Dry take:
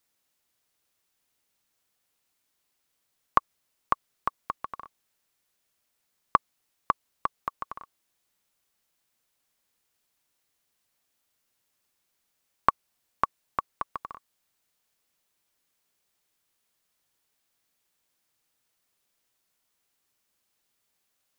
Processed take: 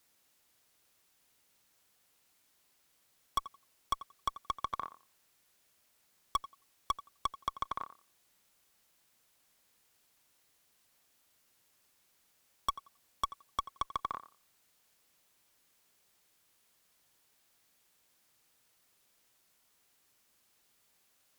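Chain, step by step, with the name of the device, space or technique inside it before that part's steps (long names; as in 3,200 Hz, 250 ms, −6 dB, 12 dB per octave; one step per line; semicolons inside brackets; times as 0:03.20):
rockabilly slapback (tube saturation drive 30 dB, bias 0.25; tape delay 87 ms, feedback 20%, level −13 dB)
level +6 dB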